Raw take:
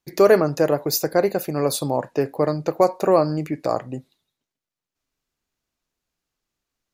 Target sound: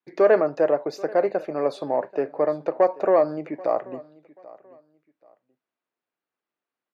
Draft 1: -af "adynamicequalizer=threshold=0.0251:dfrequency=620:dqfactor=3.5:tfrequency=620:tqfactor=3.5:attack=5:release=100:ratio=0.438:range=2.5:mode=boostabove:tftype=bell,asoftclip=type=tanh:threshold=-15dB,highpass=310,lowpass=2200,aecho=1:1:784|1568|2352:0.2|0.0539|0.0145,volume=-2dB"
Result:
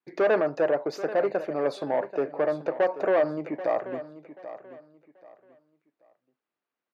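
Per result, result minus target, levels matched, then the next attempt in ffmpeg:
soft clipping: distortion +11 dB; echo-to-direct +7.5 dB
-af "adynamicequalizer=threshold=0.0251:dfrequency=620:dqfactor=3.5:tfrequency=620:tqfactor=3.5:attack=5:release=100:ratio=0.438:range=2.5:mode=boostabove:tftype=bell,asoftclip=type=tanh:threshold=-5.5dB,highpass=310,lowpass=2200,aecho=1:1:784|1568|2352:0.2|0.0539|0.0145,volume=-2dB"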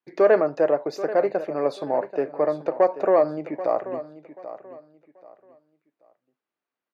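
echo-to-direct +7.5 dB
-af "adynamicequalizer=threshold=0.0251:dfrequency=620:dqfactor=3.5:tfrequency=620:tqfactor=3.5:attack=5:release=100:ratio=0.438:range=2.5:mode=boostabove:tftype=bell,asoftclip=type=tanh:threshold=-5.5dB,highpass=310,lowpass=2200,aecho=1:1:784|1568:0.0841|0.0227,volume=-2dB"

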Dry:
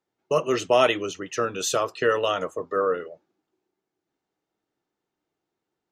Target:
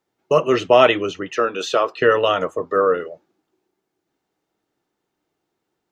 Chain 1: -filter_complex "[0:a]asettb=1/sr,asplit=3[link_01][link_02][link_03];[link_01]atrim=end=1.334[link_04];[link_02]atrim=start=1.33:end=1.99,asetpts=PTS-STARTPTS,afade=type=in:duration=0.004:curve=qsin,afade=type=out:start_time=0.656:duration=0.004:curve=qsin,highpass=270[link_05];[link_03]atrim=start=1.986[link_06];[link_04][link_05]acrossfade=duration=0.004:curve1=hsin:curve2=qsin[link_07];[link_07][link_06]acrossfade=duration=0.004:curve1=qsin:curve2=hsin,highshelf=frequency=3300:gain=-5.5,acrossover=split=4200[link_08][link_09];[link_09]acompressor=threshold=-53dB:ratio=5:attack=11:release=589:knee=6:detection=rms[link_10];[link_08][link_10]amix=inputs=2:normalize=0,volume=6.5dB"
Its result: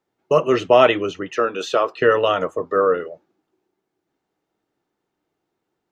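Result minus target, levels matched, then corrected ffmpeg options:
8,000 Hz band −2.5 dB
-filter_complex "[0:a]asettb=1/sr,asplit=3[link_01][link_02][link_03];[link_01]atrim=end=1.334[link_04];[link_02]atrim=start=1.33:end=1.99,asetpts=PTS-STARTPTS,afade=type=in:duration=0.004:curve=qsin,afade=type=out:start_time=0.656:duration=0.004:curve=qsin,highpass=270[link_05];[link_03]atrim=start=1.986[link_06];[link_04][link_05]acrossfade=duration=0.004:curve1=hsin:curve2=qsin[link_07];[link_07][link_06]acrossfade=duration=0.004:curve1=qsin:curve2=hsin,acrossover=split=4200[link_08][link_09];[link_09]acompressor=threshold=-53dB:ratio=5:attack=11:release=589:knee=6:detection=rms[link_10];[link_08][link_10]amix=inputs=2:normalize=0,volume=6.5dB"

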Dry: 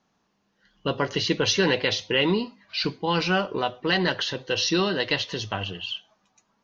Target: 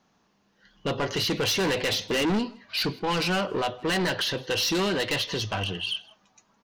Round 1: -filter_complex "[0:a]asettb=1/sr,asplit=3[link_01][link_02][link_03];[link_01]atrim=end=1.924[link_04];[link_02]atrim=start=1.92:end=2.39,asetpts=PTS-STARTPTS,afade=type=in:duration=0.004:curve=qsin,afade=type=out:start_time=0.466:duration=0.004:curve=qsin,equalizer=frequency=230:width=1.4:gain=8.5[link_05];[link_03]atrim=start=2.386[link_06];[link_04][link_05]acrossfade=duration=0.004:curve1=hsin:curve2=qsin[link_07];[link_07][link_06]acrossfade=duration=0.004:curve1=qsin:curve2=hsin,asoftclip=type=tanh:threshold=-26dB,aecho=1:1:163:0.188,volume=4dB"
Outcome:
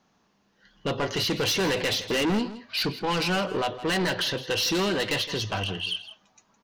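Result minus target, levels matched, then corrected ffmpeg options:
echo-to-direct +10 dB
-filter_complex "[0:a]asettb=1/sr,asplit=3[link_01][link_02][link_03];[link_01]atrim=end=1.924[link_04];[link_02]atrim=start=1.92:end=2.39,asetpts=PTS-STARTPTS,afade=type=in:duration=0.004:curve=qsin,afade=type=out:start_time=0.466:duration=0.004:curve=qsin,equalizer=frequency=230:width=1.4:gain=8.5[link_05];[link_03]atrim=start=2.386[link_06];[link_04][link_05]acrossfade=duration=0.004:curve1=hsin:curve2=qsin[link_07];[link_07][link_06]acrossfade=duration=0.004:curve1=qsin:curve2=hsin,asoftclip=type=tanh:threshold=-26dB,aecho=1:1:163:0.0596,volume=4dB"

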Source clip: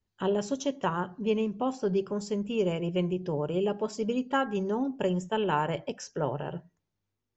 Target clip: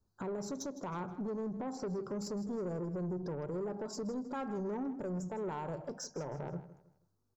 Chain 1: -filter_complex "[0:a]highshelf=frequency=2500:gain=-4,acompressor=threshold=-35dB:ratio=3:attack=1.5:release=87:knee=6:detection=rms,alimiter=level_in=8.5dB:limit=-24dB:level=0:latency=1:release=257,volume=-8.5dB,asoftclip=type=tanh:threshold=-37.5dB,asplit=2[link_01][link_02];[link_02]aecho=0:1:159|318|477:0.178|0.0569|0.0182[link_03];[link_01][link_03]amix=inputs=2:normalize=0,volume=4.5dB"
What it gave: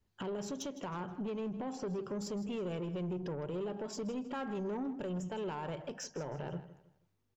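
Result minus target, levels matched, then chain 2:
2,000 Hz band +3.0 dB
-filter_complex "[0:a]asuperstop=centerf=2500:order=8:qfactor=1,highshelf=frequency=2500:gain=-4,acompressor=threshold=-35dB:ratio=3:attack=1.5:release=87:knee=6:detection=rms,alimiter=level_in=8.5dB:limit=-24dB:level=0:latency=1:release=257,volume=-8.5dB,asoftclip=type=tanh:threshold=-37.5dB,asplit=2[link_01][link_02];[link_02]aecho=0:1:159|318|477:0.178|0.0569|0.0182[link_03];[link_01][link_03]amix=inputs=2:normalize=0,volume=4.5dB"

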